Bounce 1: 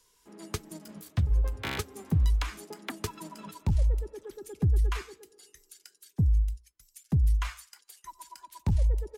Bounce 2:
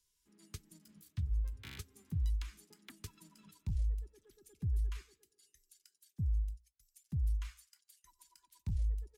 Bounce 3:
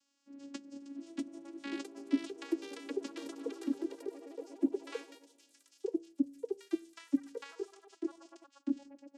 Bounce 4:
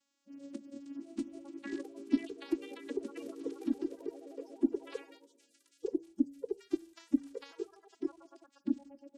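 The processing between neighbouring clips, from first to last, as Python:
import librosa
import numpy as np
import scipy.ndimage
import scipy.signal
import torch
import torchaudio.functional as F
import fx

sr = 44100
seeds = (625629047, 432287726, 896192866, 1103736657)

y1 = fx.tone_stack(x, sr, knobs='6-0-2')
y1 = F.gain(torch.from_numpy(y1), 2.5).numpy()
y2 = fx.vocoder(y1, sr, bands=8, carrier='saw', carrier_hz=279.0)
y2 = fx.echo_pitch(y2, sr, ms=731, semitones=3, count=3, db_per_echo=-3.0)
y2 = F.gain(torch.from_numpy(y2), 8.0).numpy()
y3 = fx.spec_quant(y2, sr, step_db=30)
y3 = fx.low_shelf(y3, sr, hz=390.0, db=7.5)
y3 = F.gain(torch.from_numpy(y3), -3.0).numpy()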